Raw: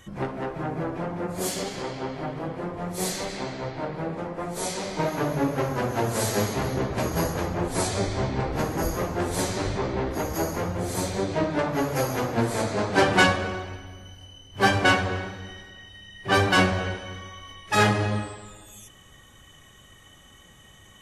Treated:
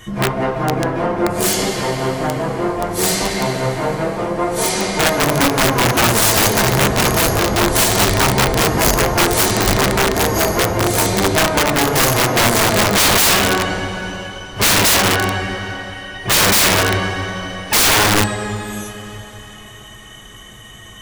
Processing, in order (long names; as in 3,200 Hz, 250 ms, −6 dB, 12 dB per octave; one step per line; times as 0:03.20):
coupled-rooms reverb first 0.21 s, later 3.8 s, from −20 dB, DRR −3 dB
wrap-around overflow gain 16 dB
level +8.5 dB